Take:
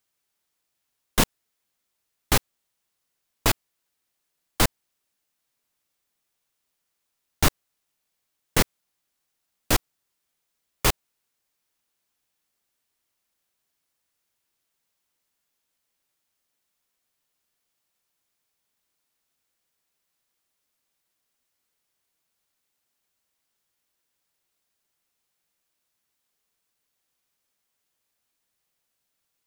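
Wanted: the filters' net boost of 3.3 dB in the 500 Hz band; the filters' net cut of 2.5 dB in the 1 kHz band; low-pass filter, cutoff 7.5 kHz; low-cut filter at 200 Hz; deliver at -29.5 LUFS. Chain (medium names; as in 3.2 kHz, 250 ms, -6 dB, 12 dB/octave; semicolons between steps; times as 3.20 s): high-pass 200 Hz; low-pass 7.5 kHz; peaking EQ 500 Hz +5.5 dB; peaking EQ 1 kHz -5 dB; trim -2 dB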